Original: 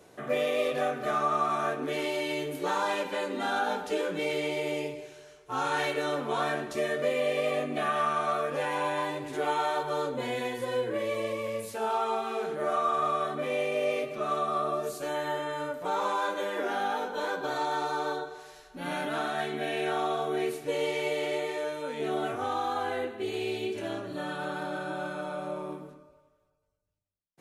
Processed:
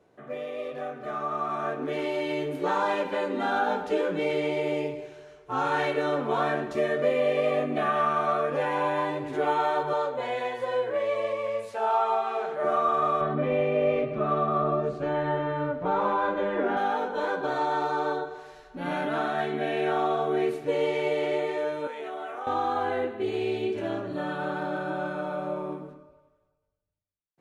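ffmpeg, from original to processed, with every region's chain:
-filter_complex "[0:a]asettb=1/sr,asplit=3[a][b][c];[a]atrim=end=9.934[d];[b]atrim=start=9.93:end=12.64,asetpts=PTS-STARTPTS,afade=t=in:d=0.004:c=qsin,afade=t=out:st=2.706:d=0.004:c=qsin,lowpass=10k,lowshelf=f=440:t=q:w=1.5:g=-10[e];[c]atrim=start=12.636[f];[d][e]acrossfade=d=0.004:c1=hsin:c2=qsin[g];[g][f]acrossfade=d=0.004:c1=qsin:c2=hsin,asettb=1/sr,asplit=3[h][i][j];[h]atrim=end=13.214[k];[i]atrim=start=13.21:end=16.77,asetpts=PTS-STARTPTS,afade=t=in:d=0.004:c=qsin,afade=t=out:st=3.556:d=0.004:c=qsin,lowpass=6.2k,bass=f=250:g=10,treble=f=4k:g=-10[l];[j]atrim=start=16.766[m];[k][l]acrossfade=d=0.004:c1=hsin:c2=qsin[n];[n][m]acrossfade=d=0.004:c1=qsin:c2=hsin,asettb=1/sr,asplit=3[o][p][q];[o]atrim=end=21.874[r];[p]atrim=start=21.87:end=22.47,asetpts=PTS-STARTPTS,afade=t=in:d=0.004:c=qsin,afade=t=out:st=0.596:d=0.004:c=qsin,highpass=620,equalizer=f=4.4k:w=2.6:g=-5,acompressor=threshold=-35dB:ratio=6:attack=3.2:release=140:knee=1:detection=peak[s];[q]atrim=start=22.466[t];[r][s]acrossfade=d=0.004:c1=hsin:c2=qsin[u];[u][t]acrossfade=d=0.004:c1=qsin:c2=hsin,lowpass=f=1.7k:p=1,dynaudnorm=f=470:g=7:m=11dB,volume=-6.5dB"

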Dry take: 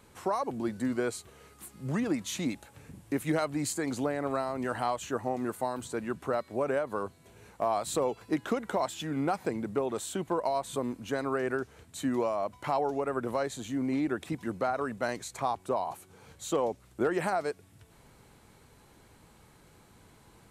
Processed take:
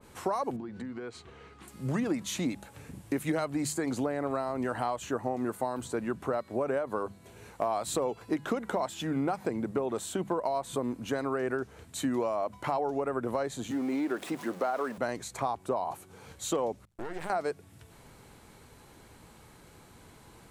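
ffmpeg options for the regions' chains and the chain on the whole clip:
-filter_complex "[0:a]asettb=1/sr,asplit=3[a][b][c];[a]atrim=end=0.564[d];[b]atrim=start=0.56:end=1.68,asetpts=PTS-STARTPTS,afade=t=in:d=0.004:c=qsin,afade=t=out:st=1.116:d=0.004:c=qsin,lowpass=3.5k,bandreject=f=590:w=6.8,acompressor=threshold=-39dB:ratio=16:attack=3.2:release=140:knee=1:detection=peak[e];[c]atrim=start=1.676[f];[d][e]acrossfade=d=0.004:c1=hsin:c2=qsin[g];[g][f]acrossfade=d=0.004:c1=qsin:c2=hsin,asettb=1/sr,asplit=3[h][i][j];[h]atrim=end=13.714[k];[i]atrim=start=13.71:end=14.98,asetpts=PTS-STARTPTS,afade=t=in:d=0.004:c=qsin,afade=t=out:st=1.266:d=0.004:c=qsin,aeval=exprs='val(0)+0.5*0.00891*sgn(val(0))':c=same,highpass=300[l];[j]atrim=start=14.976[m];[k][l]acrossfade=d=0.004:c1=hsin:c2=qsin[n];[n][m]acrossfade=d=0.004:c1=qsin:c2=hsin,asettb=1/sr,asplit=3[o][p][q];[o]atrim=end=16.854[r];[p]atrim=start=16.85:end=17.3,asetpts=PTS-STARTPTS,afade=t=in:d=0.004:c=qsin,afade=t=out:st=0.446:d=0.004:c=qsin,agate=range=-33dB:threshold=-47dB:ratio=3:release=100:detection=peak,acompressor=threshold=-36dB:ratio=4:attack=3.2:release=140:knee=1:detection=peak,aeval=exprs='max(val(0),0)':c=same[s];[q]atrim=start=17.296[t];[r][s]acrossfade=d=0.004:c1=hsin:c2=qsin[u];[u][t]acrossfade=d=0.004:c1=qsin:c2=hsin,bandreject=f=50:t=h:w=6,bandreject=f=100:t=h:w=6,bandreject=f=150:t=h:w=6,bandreject=f=200:t=h:w=6,acompressor=threshold=-32dB:ratio=2.5,adynamicequalizer=threshold=0.00251:dfrequency=1600:dqfactor=0.7:tfrequency=1600:tqfactor=0.7:attack=5:release=100:ratio=0.375:range=2:mode=cutabove:tftype=highshelf,volume=4dB"

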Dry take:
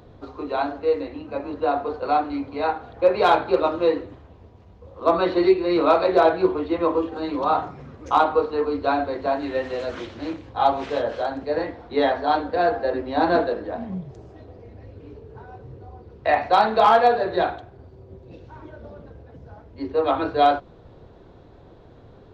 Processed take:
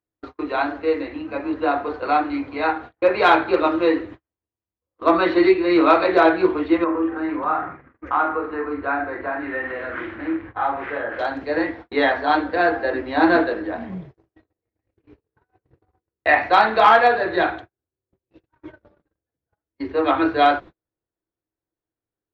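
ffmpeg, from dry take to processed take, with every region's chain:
-filter_complex "[0:a]asettb=1/sr,asplit=3[a][b][c];[a]atrim=end=6.844[d];[b]atrim=start=6.84:end=11.19,asetpts=PTS-STARTPTS,afade=t=in:d=0.004:c=qsin,afade=t=out:st=4.346:d=0.004:c=qsin,acompressor=threshold=-36dB:ratio=1.5:attack=3.2:release=140:knee=1:detection=peak,lowpass=f=1.7k:t=q:w=1.7,asplit=2[e][f];[f]adelay=43,volume=-7dB[g];[e][g]amix=inputs=2:normalize=0,atrim=end_sample=191835[h];[c]atrim=start=11.186[i];[d][h]acrossfade=d=0.004:c1=hsin:c2=qsin[j];[j][i]acrossfade=d=0.004:c1=qsin:c2=hsin,equalizer=f=320:t=o:w=0.22:g=11.5,agate=range=-44dB:threshold=-35dB:ratio=16:detection=peak,equalizer=f=1.9k:t=o:w=1.5:g=12,volume=-2dB"

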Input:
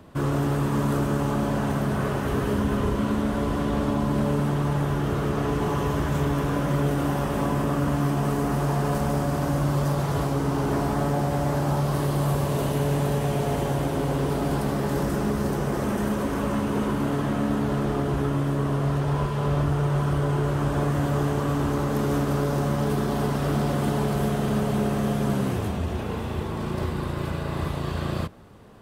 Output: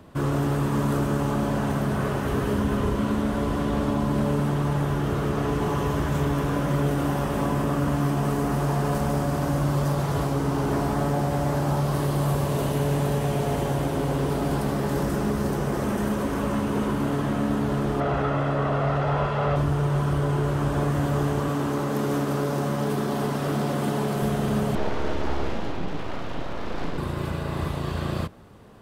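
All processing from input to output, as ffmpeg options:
-filter_complex "[0:a]asettb=1/sr,asplit=3[a][b][c];[a]atrim=end=18.004[d];[b]atrim=start=18:end=19.56,asetpts=PTS-STARTPTS,afade=t=in:d=0.004:c=qsin,afade=t=out:st=1.556:d=0.004:c=qsin,lowpass=f=3.9k:p=1,aecho=1:1:1.5:0.42,atrim=end_sample=68796,asplit=2[e][f];[f]highpass=f=720:p=1,volume=15dB,asoftclip=type=tanh:threshold=-13dB[g];[e][g]amix=inputs=2:normalize=0,lowpass=f=2k:p=1,volume=-6dB[h];[c]atrim=start=19.556[i];[d][h]acrossfade=d=0.004:c1=hsin:c2=qsin[j];[j][i]acrossfade=d=0.004:c1=qsin:c2=hsin,asettb=1/sr,asplit=3[k][l][m];[k]atrim=end=21.484[n];[l]atrim=start=21.48:end=24.22,asetpts=PTS-STARTPTS,afade=t=in:d=0.004:c=qsin,afade=t=out:st=2.736:d=0.004:c=qsin,highpass=140,volume=17.5dB,asoftclip=hard,volume=-17.5dB[o];[m]atrim=start=24.216[p];[n][o]acrossfade=d=0.004:c1=hsin:c2=qsin[q];[q][p]acrossfade=d=0.004:c1=qsin:c2=hsin,asettb=1/sr,asplit=3[r][s][t];[r]atrim=end=24.754[u];[s]atrim=start=24.75:end=26.98,asetpts=PTS-STARTPTS,afade=t=in:d=0.004:c=qsin,afade=t=out:st=2.226:d=0.004:c=qsin,lowpass=f=5.3k:w=0.5412,lowpass=f=5.3k:w=1.3066,aeval=exprs='abs(val(0))':c=same,asplit=2[v][w];[w]adelay=47,volume=-11dB[x];[v][x]amix=inputs=2:normalize=0,atrim=end_sample=98343[y];[t]atrim=start=26.976[z];[u][y]acrossfade=d=0.004:c1=hsin:c2=qsin[aa];[aa][z]acrossfade=d=0.004:c1=qsin:c2=hsin"

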